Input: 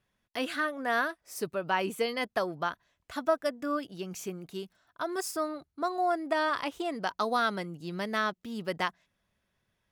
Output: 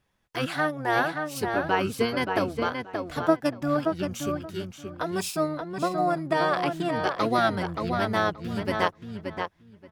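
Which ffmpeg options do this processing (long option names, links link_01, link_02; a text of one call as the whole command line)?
ffmpeg -i in.wav -filter_complex "[0:a]asplit=2[link_01][link_02];[link_02]asetrate=22050,aresample=44100,atempo=2,volume=-3dB[link_03];[link_01][link_03]amix=inputs=2:normalize=0,asplit=2[link_04][link_05];[link_05]adelay=577,lowpass=frequency=3400:poles=1,volume=-5dB,asplit=2[link_06][link_07];[link_07]adelay=577,lowpass=frequency=3400:poles=1,volume=0.18,asplit=2[link_08][link_09];[link_09]adelay=577,lowpass=frequency=3400:poles=1,volume=0.18[link_10];[link_04][link_06][link_08][link_10]amix=inputs=4:normalize=0,volume=2.5dB" out.wav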